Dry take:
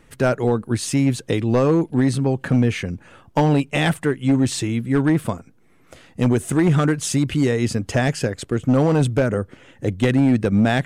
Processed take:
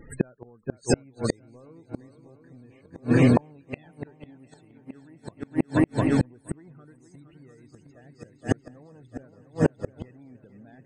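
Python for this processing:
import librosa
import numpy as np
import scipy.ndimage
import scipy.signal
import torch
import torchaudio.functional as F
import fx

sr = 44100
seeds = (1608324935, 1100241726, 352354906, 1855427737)

y = fx.low_shelf(x, sr, hz=76.0, db=-8.5, at=(4.25, 5.19))
y = fx.spec_topn(y, sr, count=32)
y = fx.echo_heads(y, sr, ms=233, heads='second and third', feedback_pct=66, wet_db=-8.0)
y = fx.gate_flip(y, sr, shuts_db=-13.0, range_db=-39)
y = y * 10.0 ** (5.5 / 20.0)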